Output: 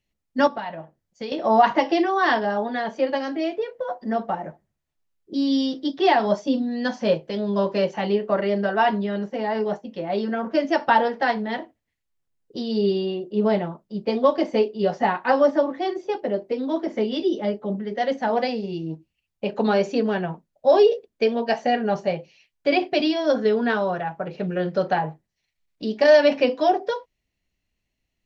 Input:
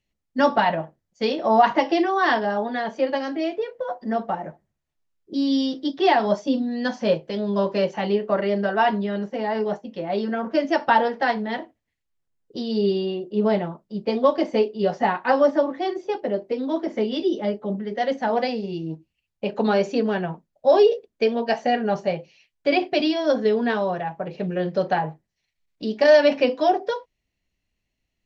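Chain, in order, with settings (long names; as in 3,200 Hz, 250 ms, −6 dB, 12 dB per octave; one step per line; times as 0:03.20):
0:00.47–0:01.32: downward compressor 2.5 to 1, threshold −34 dBFS, peak gain reduction 13 dB
0:23.34–0:24.92: parametric band 1,400 Hz +8 dB 0.23 octaves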